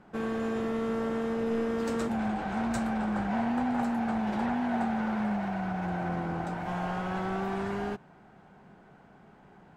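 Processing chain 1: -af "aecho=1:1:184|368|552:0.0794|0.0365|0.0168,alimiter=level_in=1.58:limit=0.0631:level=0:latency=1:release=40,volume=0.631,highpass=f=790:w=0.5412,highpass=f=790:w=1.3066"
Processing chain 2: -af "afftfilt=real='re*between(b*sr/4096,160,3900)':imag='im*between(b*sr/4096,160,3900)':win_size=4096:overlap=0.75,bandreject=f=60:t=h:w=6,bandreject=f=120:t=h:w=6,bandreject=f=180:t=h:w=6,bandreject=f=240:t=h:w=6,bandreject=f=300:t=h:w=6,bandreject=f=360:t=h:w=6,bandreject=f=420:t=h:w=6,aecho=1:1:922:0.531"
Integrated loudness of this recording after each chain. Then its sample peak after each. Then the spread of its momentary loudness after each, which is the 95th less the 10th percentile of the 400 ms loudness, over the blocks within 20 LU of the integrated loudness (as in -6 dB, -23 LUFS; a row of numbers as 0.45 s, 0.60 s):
-43.0 LUFS, -31.0 LUFS; -31.0 dBFS, -17.5 dBFS; 20 LU, 8 LU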